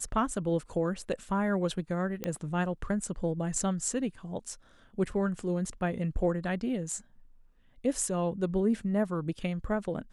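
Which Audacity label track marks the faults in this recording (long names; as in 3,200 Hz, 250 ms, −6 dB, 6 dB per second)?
2.240000	2.240000	click −17 dBFS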